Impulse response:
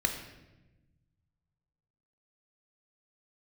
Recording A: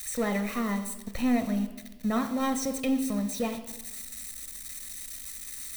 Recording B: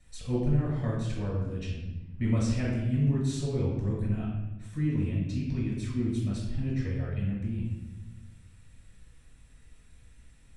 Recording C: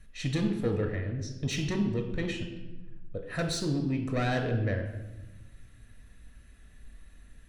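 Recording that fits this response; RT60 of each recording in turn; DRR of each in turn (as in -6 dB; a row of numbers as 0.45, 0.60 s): C; 1.1, 1.0, 1.0 s; 9.0, -4.5, 4.5 dB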